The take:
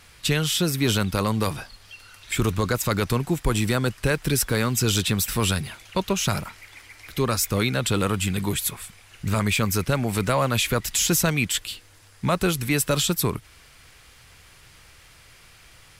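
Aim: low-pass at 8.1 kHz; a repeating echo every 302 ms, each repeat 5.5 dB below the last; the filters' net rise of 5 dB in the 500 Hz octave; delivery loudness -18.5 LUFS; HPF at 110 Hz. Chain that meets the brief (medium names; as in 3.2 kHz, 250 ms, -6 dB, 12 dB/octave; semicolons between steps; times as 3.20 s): high-pass 110 Hz; low-pass 8.1 kHz; peaking EQ 500 Hz +6 dB; feedback delay 302 ms, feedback 53%, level -5.5 dB; trim +3.5 dB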